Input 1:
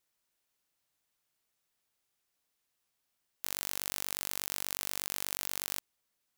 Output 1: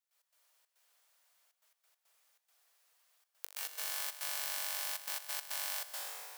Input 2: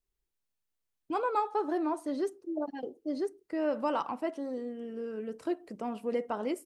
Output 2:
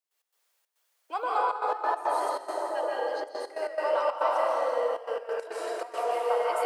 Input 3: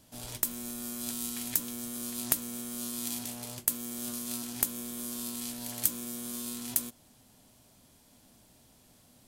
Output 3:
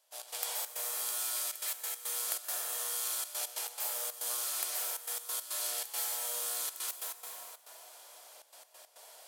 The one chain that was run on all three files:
downward compressor 6 to 1, threshold −38 dBFS
Butterworth high-pass 520 Hz 36 dB per octave
dense smooth reverb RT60 3.6 s, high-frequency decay 0.6×, pre-delay 115 ms, DRR −7 dB
gate pattern ".x.xxx.xxxxxxx.x" 139 BPM −12 dB
normalise the peak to −12 dBFS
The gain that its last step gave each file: +2.5, +11.0, +2.5 decibels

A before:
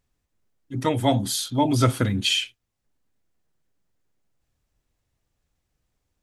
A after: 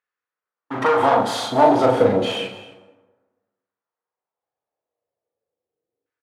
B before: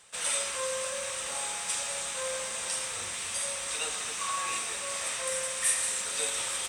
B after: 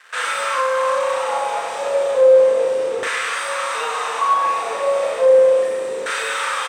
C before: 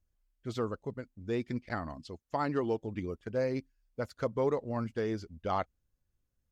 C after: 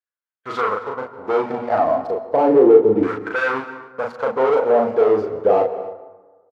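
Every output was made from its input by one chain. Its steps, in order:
high-pass filter 57 Hz 24 dB per octave
low-shelf EQ 200 Hz −9 dB
mains-hum notches 60/120/180/240/300 Hz
harmonic and percussive parts rebalanced percussive −10 dB
parametric band 470 Hz +8.5 dB 0.22 octaves
leveller curve on the samples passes 5
downward compressor, threshold −21 dBFS
auto-filter band-pass saw down 0.33 Hz 370–1,600 Hz
double-tracking delay 38 ms −3 dB
single-tap delay 266 ms −19.5 dB
dense smooth reverb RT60 1.3 s, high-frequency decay 0.45×, pre-delay 115 ms, DRR 13 dB
loudness normalisation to −18 LKFS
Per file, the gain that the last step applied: +14.5, +11.5, +14.0 decibels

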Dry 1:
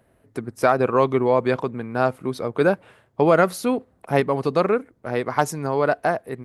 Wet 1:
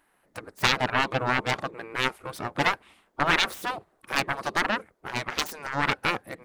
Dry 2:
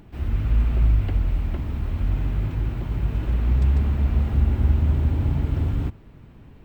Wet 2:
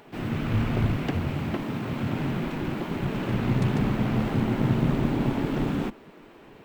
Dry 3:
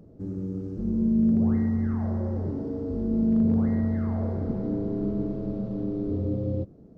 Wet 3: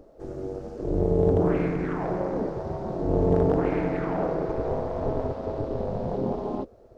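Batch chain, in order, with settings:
phase distortion by the signal itself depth 0.5 ms
gate on every frequency bin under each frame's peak −10 dB weak
loudness normalisation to −27 LKFS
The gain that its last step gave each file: +1.5, +7.0, +9.5 decibels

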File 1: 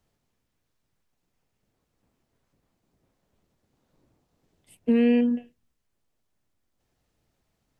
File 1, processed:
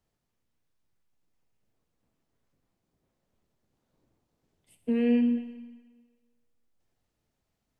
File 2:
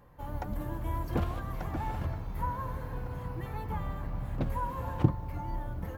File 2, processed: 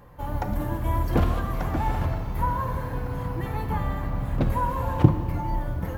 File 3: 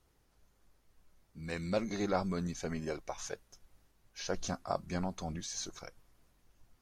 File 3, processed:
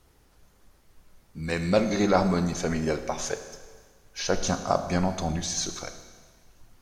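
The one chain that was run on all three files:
four-comb reverb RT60 1.5 s, combs from 26 ms, DRR 8.5 dB
loudness normalisation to −27 LKFS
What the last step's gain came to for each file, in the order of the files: −6.5, +8.0, +10.5 decibels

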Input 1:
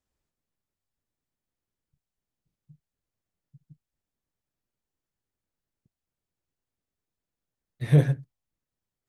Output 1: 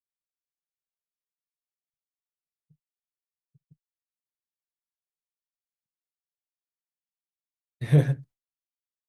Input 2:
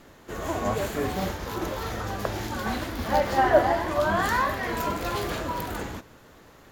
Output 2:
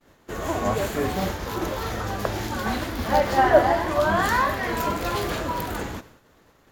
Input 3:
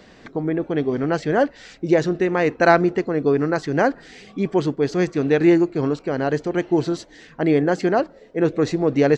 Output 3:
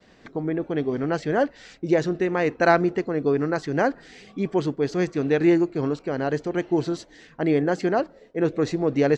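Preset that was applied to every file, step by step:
downward expander −44 dBFS
loudness normalisation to −24 LKFS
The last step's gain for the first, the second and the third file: −0.5, +3.0, −3.5 decibels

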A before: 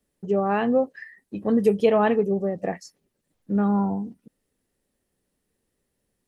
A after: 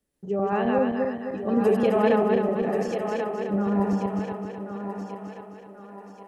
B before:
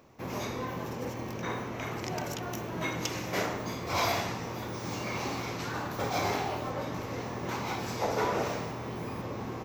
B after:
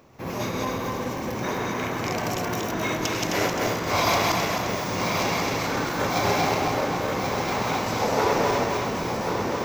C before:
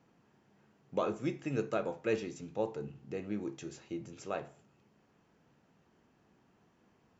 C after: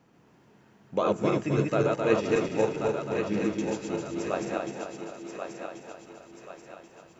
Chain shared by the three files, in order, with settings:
feedback delay that plays each chunk backwards 131 ms, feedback 68%, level −1 dB
on a send: feedback echo with a high-pass in the loop 1,084 ms, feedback 46%, high-pass 320 Hz, level −6 dB
on the sum: normalise the peak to −9 dBFS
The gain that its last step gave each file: −4.5, +4.0, +5.5 decibels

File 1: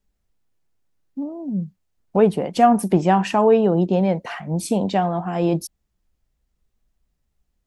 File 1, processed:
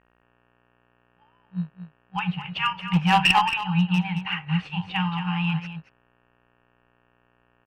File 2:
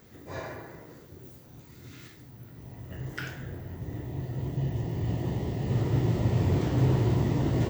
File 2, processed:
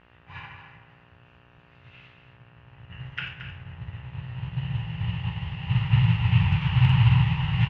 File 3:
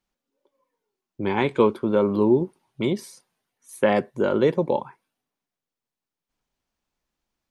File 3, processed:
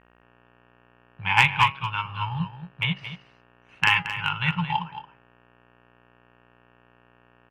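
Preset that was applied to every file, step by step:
brick-wall band-stop 190–770 Hz
hum removal 137.5 Hz, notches 21
hum with harmonics 60 Hz, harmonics 31, −54 dBFS −2 dB per octave
in parallel at −11 dB: decimation without filtering 11×
on the sum: transistor ladder low-pass 2,900 Hz, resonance 80%
asymmetric clip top −26 dBFS
on a send: single-tap delay 224 ms −8 dB
on the sum: expander for the loud parts 1.5 to 1, over −56 dBFS
loudness normalisation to −24 LKFS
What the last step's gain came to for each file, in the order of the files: +12.5, +17.0, +17.0 decibels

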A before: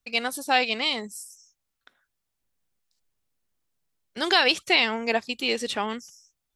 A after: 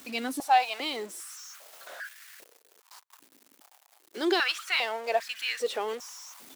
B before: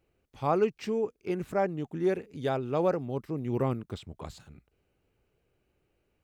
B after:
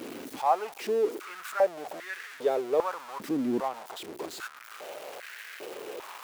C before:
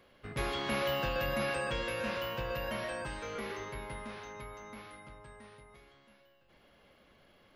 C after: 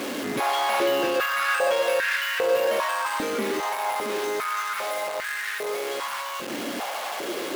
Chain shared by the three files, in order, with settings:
converter with a step at zero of −30.5 dBFS
high-pass on a step sequencer 2.5 Hz 270–1,700 Hz
normalise the peak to −12 dBFS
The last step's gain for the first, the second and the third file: −10.0, −6.0, +3.0 decibels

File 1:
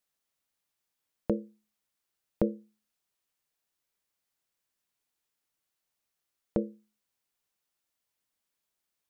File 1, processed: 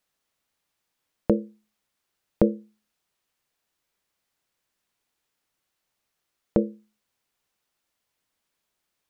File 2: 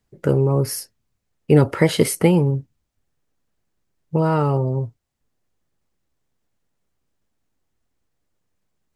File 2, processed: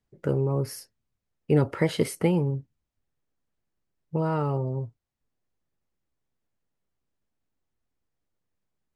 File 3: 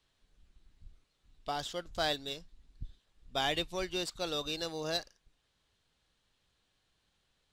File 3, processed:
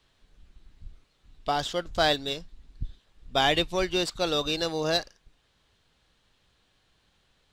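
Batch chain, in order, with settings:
high-shelf EQ 5,900 Hz −6.5 dB
loudness normalisation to −27 LKFS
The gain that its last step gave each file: +8.0, −7.5, +9.5 decibels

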